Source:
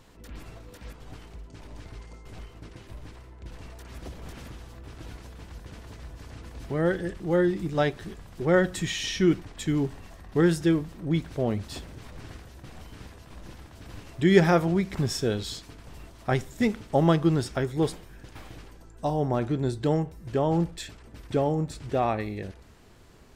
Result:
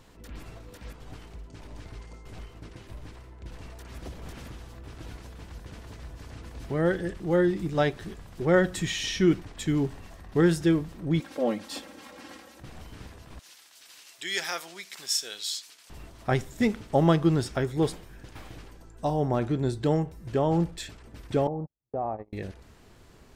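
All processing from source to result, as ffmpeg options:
-filter_complex "[0:a]asettb=1/sr,asplit=3[s0][s1][s2];[s0]atrim=end=11.204[s3];[s1]atrim=start=11.2:end=12.6,asetpts=PTS-STARTPTS,afade=t=in:d=0.004:c=qsin,afade=t=out:st=1.396:d=0.004:c=qsin,highpass=280,aecho=1:1:3.7:0.96,atrim=end_sample=61740[s4];[s2]atrim=start=12.596[s5];[s3][s4]acrossfade=d=0.004:c1=hsin:c2=qsin[s6];[s6][s5]acrossfade=d=0.004:c1=qsin:c2=hsin,asettb=1/sr,asplit=3[s7][s8][s9];[s7]atrim=end=13.394[s10];[s8]atrim=start=13.39:end=15.9,asetpts=PTS-STARTPTS,afade=t=in:d=0.004:c=qsin,afade=t=out:st=2.506:d=0.004:c=qsin,bandpass=f=4400:t=q:w=0.7,aemphasis=mode=production:type=bsi[s11];[s9]atrim=start=15.896[s12];[s10][s11]acrossfade=d=0.004:c1=hsin:c2=qsin[s13];[s13][s12]acrossfade=d=0.004:c1=qsin:c2=hsin,asettb=1/sr,asplit=3[s14][s15][s16];[s14]atrim=end=21.474[s17];[s15]atrim=start=21.47:end=22.33,asetpts=PTS-STARTPTS,afade=t=in:d=0.004:c=qsin,afade=t=out:st=0.856:d=0.004:c=qsin,agate=range=0.00224:threshold=0.0355:ratio=16:release=100:detection=peak,acompressor=threshold=0.0224:ratio=3:attack=3.2:release=140:knee=1:detection=peak,lowpass=f=830:t=q:w=1.8[s18];[s16]atrim=start=22.326[s19];[s17][s18]acrossfade=d=0.004:c1=hsin:c2=qsin[s20];[s20][s19]acrossfade=d=0.004:c1=qsin:c2=hsin"

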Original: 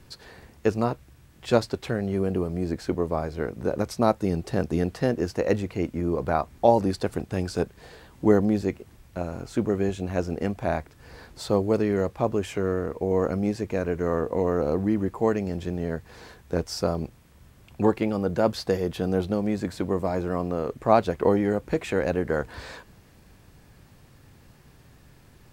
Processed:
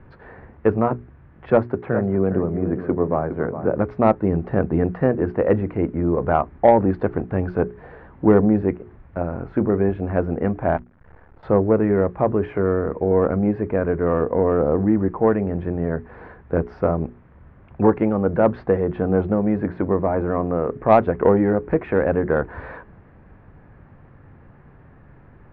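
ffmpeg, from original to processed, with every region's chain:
-filter_complex "[0:a]asettb=1/sr,asplit=3[s0][s1][s2];[s0]atrim=end=1.504[s3];[s1]atrim=start=1.5:end=3.75,asetpts=PTS-STARTPTS,afade=t=in:d=0.004:c=qsin,afade=t=out:st=2.246:d=0.004:c=qsin,highpass=f=89:w=0.5412,highpass=f=89:w=1.3066,equalizer=f=4200:t=o:w=1.4:g=-6,aecho=1:1:412:0.282,atrim=end_sample=99225[s4];[s2]atrim=start=3.746[s5];[s3][s4]acrossfade=d=0.004:c1=hsin:c2=qsin[s6];[s6][s5]acrossfade=d=0.004:c1=qsin:c2=hsin,asettb=1/sr,asplit=3[s7][s8][s9];[s7]atrim=end=10.774[s10];[s8]atrim=start=10.77:end=11.43,asetpts=PTS-STARTPTS,afade=t=in:d=0.004:c=qsin,afade=t=out:st=0.656:d=0.004:c=qsin,aemphasis=mode=reproduction:type=75kf,acrossover=split=120|680[s11][s12][s13];[s11]acompressor=threshold=0.00398:ratio=4[s14];[s12]acompressor=threshold=0.00126:ratio=4[s15];[s13]acompressor=threshold=0.00178:ratio=4[s16];[s14][s15][s16]amix=inputs=3:normalize=0,acrusher=bits=7:dc=4:mix=0:aa=0.000001[s17];[s9]atrim=start=11.426[s18];[s10][s17]acrossfade=d=0.004:c1=hsin:c2=qsin[s19];[s19][s18]acrossfade=d=0.004:c1=qsin:c2=hsin,lowpass=f=1800:w=0.5412,lowpass=f=1800:w=1.3066,acontrast=64,bandreject=f=60:t=h:w=6,bandreject=f=120:t=h:w=6,bandreject=f=180:t=h:w=6,bandreject=f=240:t=h:w=6,bandreject=f=300:t=h:w=6,bandreject=f=360:t=h:w=6,bandreject=f=420:t=h:w=6"

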